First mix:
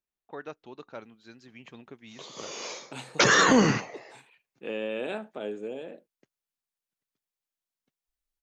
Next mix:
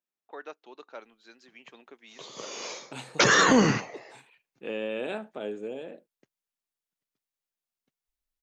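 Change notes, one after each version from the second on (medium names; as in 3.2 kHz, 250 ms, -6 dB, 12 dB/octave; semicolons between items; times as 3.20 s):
first voice: add Bessel high-pass 410 Hz, order 4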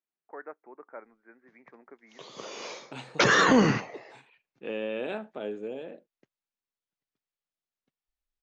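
first voice: add steep low-pass 2.2 kHz 96 dB/octave; master: add distance through air 96 m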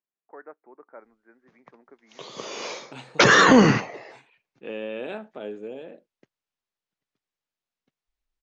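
first voice: add distance through air 420 m; background +6.0 dB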